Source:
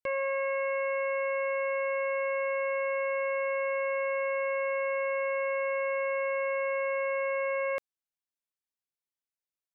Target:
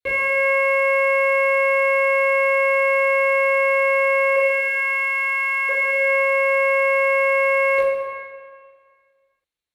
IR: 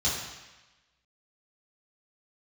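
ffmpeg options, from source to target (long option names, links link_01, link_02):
-filter_complex "[0:a]asplit=2[link_01][link_02];[link_02]acrusher=bits=6:mix=0:aa=0.000001,volume=-5dB[link_03];[link_01][link_03]amix=inputs=2:normalize=0,asettb=1/sr,asplit=3[link_04][link_05][link_06];[link_04]atrim=end=4.364[link_07];[link_05]atrim=start=4.36:end=5.69,asetpts=PTS-STARTPTS,afade=type=in:duration=0.004:curve=qsin,afade=type=out:start_time=1.326:duration=0.004:curve=qsin,highpass=frequency=1100:width=0.5412,highpass=frequency=1100:width=1.3066[link_08];[link_06]atrim=start=5.686[link_09];[link_07][link_08]acrossfade=duration=0.004:curve1=hsin:curve2=qsin[link_10];[link_10][link_09]acrossfade=duration=0.004:curve1=qsin:curve2=hsin[link_11];[1:a]atrim=start_sample=2205,asetrate=26460,aresample=44100[link_12];[link_11][link_12]afir=irnorm=-1:irlink=0,volume=-6dB"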